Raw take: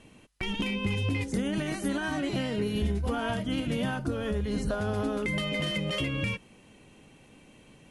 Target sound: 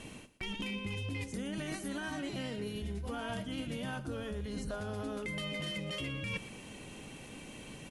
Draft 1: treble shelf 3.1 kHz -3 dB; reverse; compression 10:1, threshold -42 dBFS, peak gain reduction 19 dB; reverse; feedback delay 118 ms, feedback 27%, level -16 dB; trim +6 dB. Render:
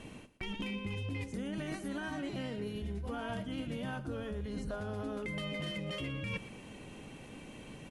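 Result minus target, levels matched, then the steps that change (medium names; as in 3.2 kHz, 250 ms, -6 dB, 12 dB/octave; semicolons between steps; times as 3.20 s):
8 kHz band -6.0 dB
change: treble shelf 3.1 kHz +5 dB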